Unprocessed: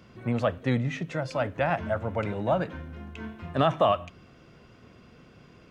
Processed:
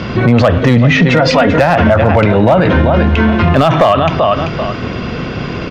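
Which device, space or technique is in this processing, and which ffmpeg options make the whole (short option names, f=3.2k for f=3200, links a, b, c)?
loud club master: -filter_complex "[0:a]lowpass=f=5.2k:w=0.5412,lowpass=f=5.2k:w=1.3066,asettb=1/sr,asplit=3[a][b][c];[a]atrim=end=0.994[d];[b]atrim=start=0.99:end=1.59,asetpts=PTS-STARTPTS,afade=t=in:d=0.004:c=qsin,afade=t=out:st=0.596:d=0.004:c=qsin,aecho=1:1:4.2:0.9,atrim=end_sample=26460[e];[c]atrim=start=1.586[f];[d][e]acrossfade=d=0.004:c1=hsin:c2=qsin[g];[g][f]acrossfade=d=0.004:c1=qsin:c2=hsin,aecho=1:1:388|776:0.188|0.0283,acompressor=threshold=-27dB:ratio=3,asoftclip=type=hard:threshold=-22.5dB,alimiter=level_in=34dB:limit=-1dB:release=50:level=0:latency=1,volume=-1dB"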